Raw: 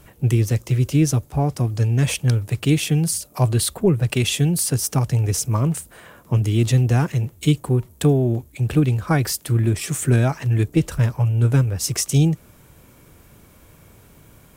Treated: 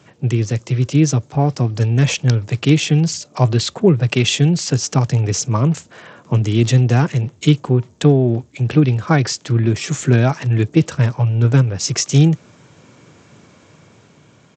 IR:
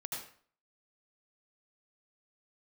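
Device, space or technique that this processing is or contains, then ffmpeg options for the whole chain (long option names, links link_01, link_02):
Bluetooth headset: -af "highpass=frequency=110:width=0.5412,highpass=frequency=110:width=1.3066,dynaudnorm=framelen=160:gausssize=13:maxgain=4dB,aresample=16000,aresample=44100,volume=2dB" -ar 32000 -c:a sbc -b:a 64k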